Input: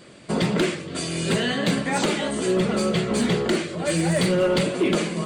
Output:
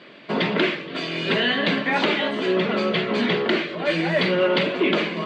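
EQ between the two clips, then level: cabinet simulation 320–3600 Hz, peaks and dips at 350 Hz -4 dB, 510 Hz -6 dB, 780 Hz -5 dB, 1.3 kHz -4 dB; +6.5 dB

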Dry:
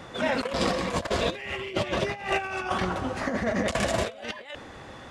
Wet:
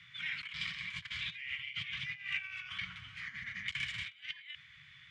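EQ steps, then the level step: vowel filter i; Chebyshev band-stop 150–910 Hz, order 4; +7.0 dB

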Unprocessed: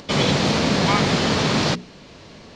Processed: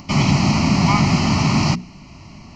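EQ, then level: bass shelf 410 Hz +6.5 dB; static phaser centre 2.4 kHz, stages 8; +2.0 dB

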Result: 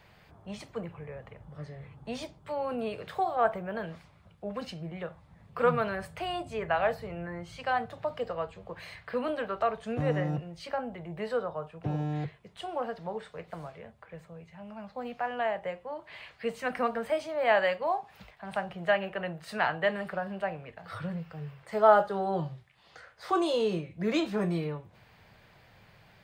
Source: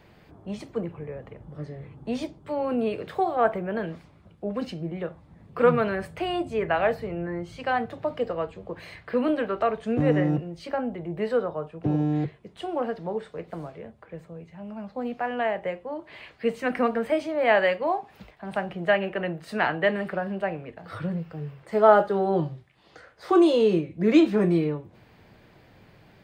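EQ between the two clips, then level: peaking EQ 310 Hz -12 dB 1.3 oct; dynamic bell 2.2 kHz, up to -5 dB, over -45 dBFS, Q 1.2; bass shelf 120 Hz -4 dB; 0.0 dB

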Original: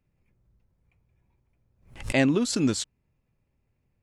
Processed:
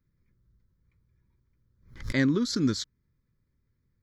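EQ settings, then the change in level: static phaser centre 2.7 kHz, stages 6; 0.0 dB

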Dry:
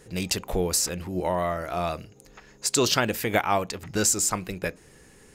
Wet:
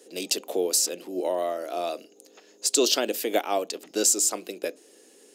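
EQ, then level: steep high-pass 270 Hz 36 dB/octave; high-order bell 1.4 kHz -10 dB; +1.5 dB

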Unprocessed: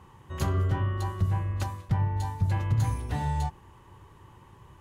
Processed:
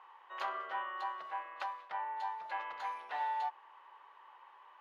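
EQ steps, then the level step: high-pass 720 Hz 24 dB/octave; distance through air 340 m; +2.5 dB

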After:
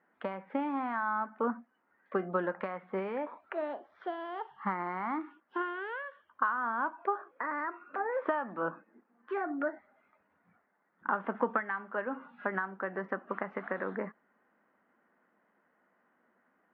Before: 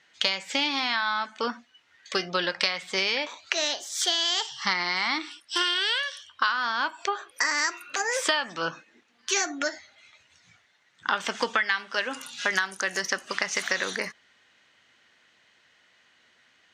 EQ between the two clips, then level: inverse Chebyshev low-pass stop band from 7.3 kHz, stop band 80 dB; peaking EQ 69 Hz -5.5 dB 1.1 oct; resonant low shelf 160 Hz -6.5 dB, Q 3; -2.5 dB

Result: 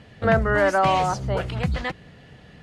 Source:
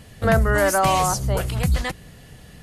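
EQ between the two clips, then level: high-pass 120 Hz 6 dB/octave; low-pass 3.4 kHz 12 dB/octave; band-stop 1.1 kHz, Q 27; 0.0 dB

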